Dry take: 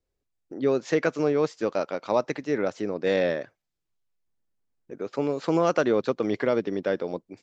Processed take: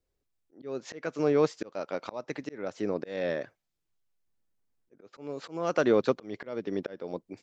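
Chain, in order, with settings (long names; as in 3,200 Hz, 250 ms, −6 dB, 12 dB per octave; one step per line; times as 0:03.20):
volume swells 430 ms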